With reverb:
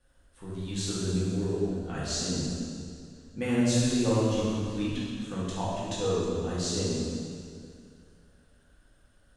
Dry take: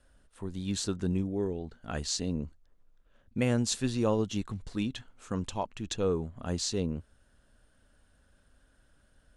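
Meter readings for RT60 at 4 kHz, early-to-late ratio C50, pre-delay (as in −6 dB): 2.1 s, −3.0 dB, 3 ms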